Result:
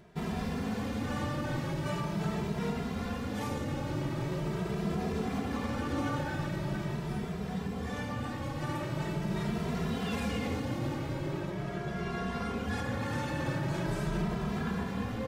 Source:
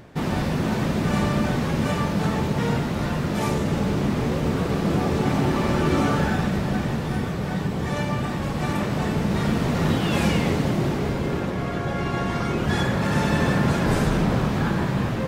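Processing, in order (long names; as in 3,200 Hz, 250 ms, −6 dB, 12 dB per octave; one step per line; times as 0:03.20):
brickwall limiter −14.5 dBFS, peak gain reduction 3.5 dB
barber-pole flanger 2.6 ms +0.42 Hz
level −7 dB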